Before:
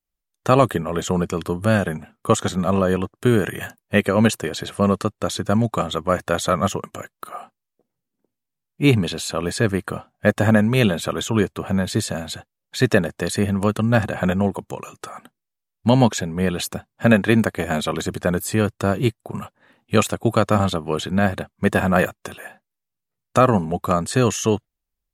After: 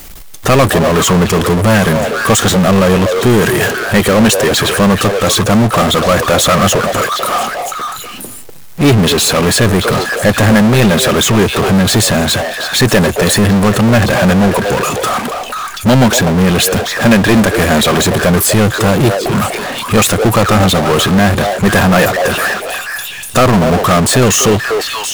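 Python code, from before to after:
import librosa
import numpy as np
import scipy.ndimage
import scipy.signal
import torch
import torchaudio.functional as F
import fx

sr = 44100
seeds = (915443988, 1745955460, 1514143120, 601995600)

y = fx.echo_stepped(x, sr, ms=244, hz=570.0, octaves=1.4, feedback_pct=70, wet_db=-11.0)
y = fx.power_curve(y, sr, exponent=0.35)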